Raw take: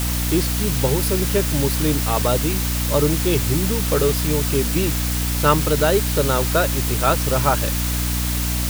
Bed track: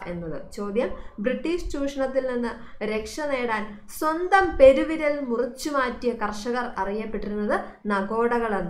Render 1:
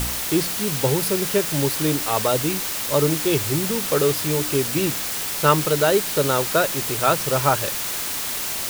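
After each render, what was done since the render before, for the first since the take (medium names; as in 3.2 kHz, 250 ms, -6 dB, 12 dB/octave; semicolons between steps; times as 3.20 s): de-hum 60 Hz, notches 5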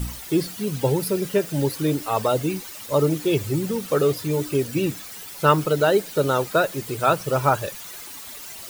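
noise reduction 14 dB, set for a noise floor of -27 dBFS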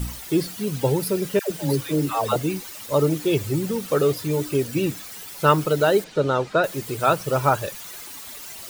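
1.39–2.36 s: phase dispersion lows, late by 115 ms, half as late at 700 Hz; 6.04–6.64 s: distance through air 110 m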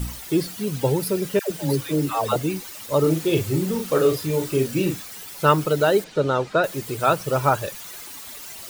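3.00–5.03 s: doubling 38 ms -5 dB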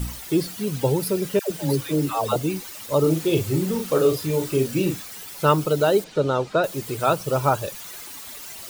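dynamic bell 1.8 kHz, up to -6 dB, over -38 dBFS, Q 1.8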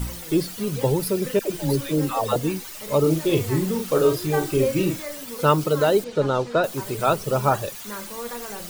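add bed track -11.5 dB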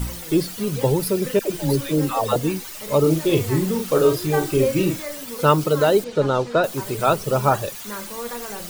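trim +2 dB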